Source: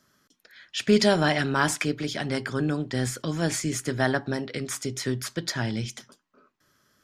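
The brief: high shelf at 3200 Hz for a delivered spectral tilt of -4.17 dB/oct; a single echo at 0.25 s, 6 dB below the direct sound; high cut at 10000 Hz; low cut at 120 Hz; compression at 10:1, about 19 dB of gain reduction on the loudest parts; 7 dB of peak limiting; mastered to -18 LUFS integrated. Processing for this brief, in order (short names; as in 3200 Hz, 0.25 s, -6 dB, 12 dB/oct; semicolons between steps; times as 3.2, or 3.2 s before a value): HPF 120 Hz; LPF 10000 Hz; high shelf 3200 Hz -3.5 dB; compressor 10:1, threshold -35 dBFS; limiter -30.5 dBFS; echo 0.25 s -6 dB; gain +22.5 dB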